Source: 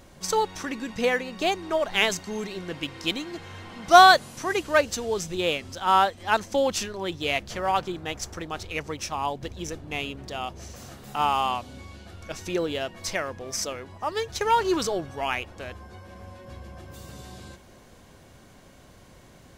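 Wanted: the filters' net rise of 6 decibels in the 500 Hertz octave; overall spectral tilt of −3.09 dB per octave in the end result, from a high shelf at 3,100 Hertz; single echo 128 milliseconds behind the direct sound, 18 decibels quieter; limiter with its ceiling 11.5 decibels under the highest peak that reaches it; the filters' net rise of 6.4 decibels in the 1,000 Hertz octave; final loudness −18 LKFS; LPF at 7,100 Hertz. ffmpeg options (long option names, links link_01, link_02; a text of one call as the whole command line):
ffmpeg -i in.wav -af "lowpass=7100,equalizer=frequency=500:width_type=o:gain=5.5,equalizer=frequency=1000:width_type=o:gain=6,highshelf=frequency=3100:gain=4.5,alimiter=limit=-8.5dB:level=0:latency=1,aecho=1:1:128:0.126,volume=5dB" out.wav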